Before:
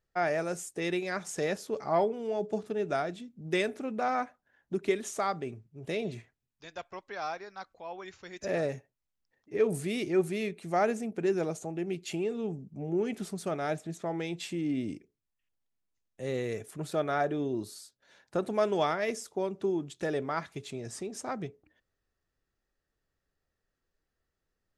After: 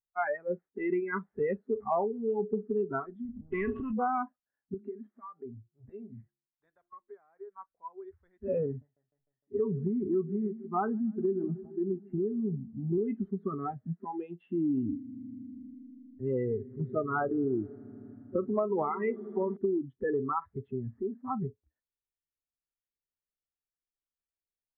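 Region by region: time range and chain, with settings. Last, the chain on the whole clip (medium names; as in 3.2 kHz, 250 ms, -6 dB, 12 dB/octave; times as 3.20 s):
3.25–3.93 s: treble shelf 3.5 kHz -7 dB + transient shaper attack -2 dB, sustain +10 dB + spectrum-flattening compressor 2:1
4.74–7.52 s: de-hum 69.93 Hz, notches 5 + compression 4:1, threshold -40 dBFS + bass shelf 360 Hz -3.5 dB
8.66–12.98 s: low-pass 1.8 kHz 24 dB/octave + peaking EQ 510 Hz -11 dB 0.35 oct + modulated delay 152 ms, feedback 65%, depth 89 cents, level -15 dB
14.58–19.57 s: treble shelf 5.2 kHz -4.5 dB + echo with a slow build-up 80 ms, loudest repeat 5, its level -18 dB
whole clip: spectral noise reduction 29 dB; steep low-pass 1.9 kHz 48 dB/octave; compression 6:1, threshold -32 dBFS; trim +6 dB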